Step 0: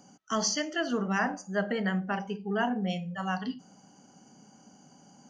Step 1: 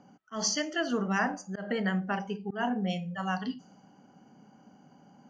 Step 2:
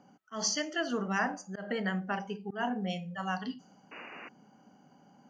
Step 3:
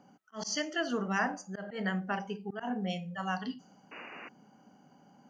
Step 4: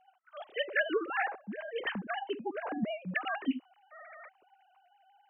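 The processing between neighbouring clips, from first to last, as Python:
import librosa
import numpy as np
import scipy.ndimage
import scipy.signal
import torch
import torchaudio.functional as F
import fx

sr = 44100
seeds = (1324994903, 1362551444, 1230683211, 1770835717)

y1 = fx.auto_swell(x, sr, attack_ms=154.0)
y1 = fx.env_lowpass(y1, sr, base_hz=2400.0, full_db=-27.5)
y2 = fx.low_shelf(y1, sr, hz=250.0, db=-4.0)
y2 = fx.spec_paint(y2, sr, seeds[0], shape='noise', start_s=3.91, length_s=0.38, low_hz=230.0, high_hz=2900.0, level_db=-45.0)
y2 = y2 * 10.0 ** (-1.5 / 20.0)
y3 = fx.auto_swell(y2, sr, attack_ms=105.0)
y4 = fx.sine_speech(y3, sr)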